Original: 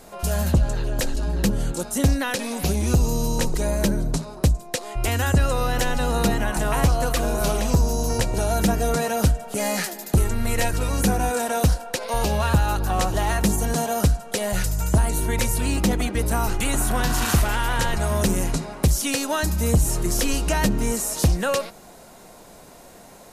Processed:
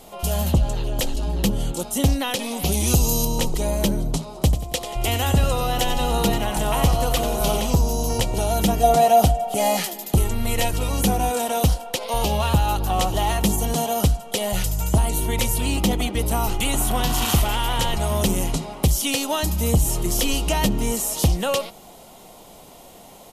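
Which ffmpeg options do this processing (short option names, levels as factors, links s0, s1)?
-filter_complex "[0:a]asettb=1/sr,asplit=3[s0][s1][s2];[s0]atrim=end=2.724[s3];[s1]atrim=start=2.72:end=3.25,asetpts=PTS-STARTPTS,afade=t=in:d=0.004:c=qsin,afade=t=out:st=0.526:d=0.004:c=qsin,highshelf=f=3300:g=10[s4];[s2]atrim=start=3.246[s5];[s3][s4]acrossfade=d=0.004:c1=hsin:c2=qsin[s6];[s6][s5]acrossfade=d=0.004:c1=qsin:c2=hsin,asplit=3[s7][s8][s9];[s7]afade=t=out:st=4.34:d=0.02[s10];[s8]aecho=1:1:92|184|276|368|460:0.299|0.134|0.0605|0.0272|0.0122,afade=t=in:st=4.34:d=0.02,afade=t=out:st=7.67:d=0.02[s11];[s9]afade=t=in:st=7.67:d=0.02[s12];[s10][s11][s12]amix=inputs=3:normalize=0,asettb=1/sr,asplit=3[s13][s14][s15];[s13]atrim=end=8.834[s16];[s14]atrim=start=8.83:end=9.77,asetpts=PTS-STARTPTS,afade=t=in:d=0.004:c=qsin,afade=t=out:st=0.936:d=0.004:c=qsin,equalizer=f=720:t=o:w=0.28:g=14.5[s17];[s15]atrim=start=9.766[s18];[s16][s17]acrossfade=d=0.004:c1=hsin:c2=qsin[s19];[s19][s18]acrossfade=d=0.004:c1=qsin:c2=hsin,equalizer=f=800:t=o:w=0.33:g=4,equalizer=f=1600:t=o:w=0.33:g=-10,equalizer=f=3150:t=o:w=0.33:g=9,equalizer=f=12500:t=o:w=0.33:g=5"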